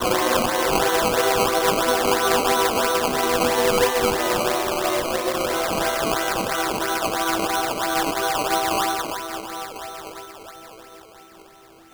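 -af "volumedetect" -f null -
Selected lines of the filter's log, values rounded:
mean_volume: -22.3 dB
max_volume: -7.7 dB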